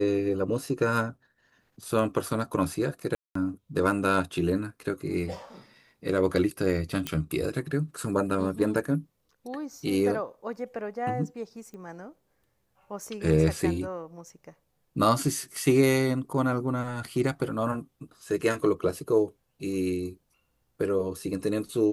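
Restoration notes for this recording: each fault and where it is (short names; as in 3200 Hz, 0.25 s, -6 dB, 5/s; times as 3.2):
3.15–3.35 gap 0.204 s
7.07 pop -13 dBFS
11.74 pop -32 dBFS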